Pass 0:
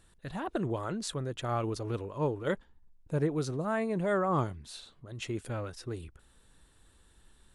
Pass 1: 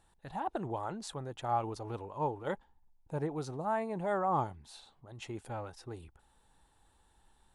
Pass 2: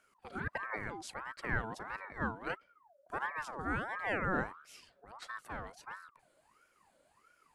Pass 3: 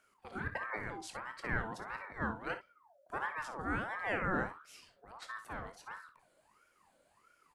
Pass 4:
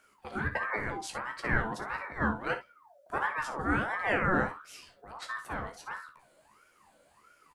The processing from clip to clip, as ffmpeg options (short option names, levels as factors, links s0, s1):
-af "equalizer=f=830:w=2.9:g=15,volume=0.447"
-af "aeval=exprs='val(0)*sin(2*PI*1000*n/s+1000*0.45/1.5*sin(2*PI*1.5*n/s))':c=same"
-af "aecho=1:1:24|55|65:0.266|0.2|0.2,volume=0.891"
-filter_complex "[0:a]asplit=2[s0][s1];[s1]adelay=14,volume=0.447[s2];[s0][s2]amix=inputs=2:normalize=0,volume=2"